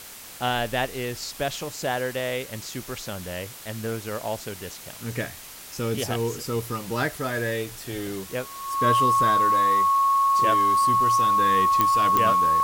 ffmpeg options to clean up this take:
ffmpeg -i in.wav -af "adeclick=threshold=4,bandreject=frequency=1100:width=30,afwtdn=0.0089" out.wav

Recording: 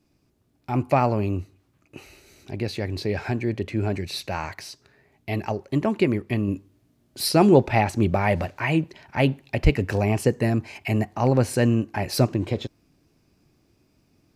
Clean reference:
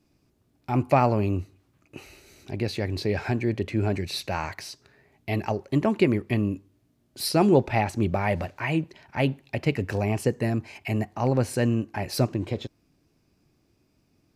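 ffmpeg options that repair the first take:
ffmpeg -i in.wav -filter_complex "[0:a]asplit=3[link_01][link_02][link_03];[link_01]afade=type=out:start_time=9.63:duration=0.02[link_04];[link_02]highpass=frequency=140:width=0.5412,highpass=frequency=140:width=1.3066,afade=type=in:start_time=9.63:duration=0.02,afade=type=out:start_time=9.75:duration=0.02[link_05];[link_03]afade=type=in:start_time=9.75:duration=0.02[link_06];[link_04][link_05][link_06]amix=inputs=3:normalize=0,asetnsamples=nb_out_samples=441:pad=0,asendcmd='6.48 volume volume -3.5dB',volume=0dB" out.wav

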